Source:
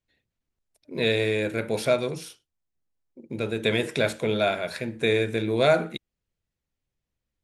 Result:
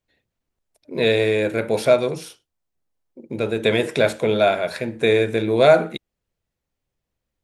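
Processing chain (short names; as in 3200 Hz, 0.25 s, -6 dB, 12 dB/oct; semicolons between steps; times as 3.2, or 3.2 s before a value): bell 650 Hz +5 dB 2 oct; gain +2.5 dB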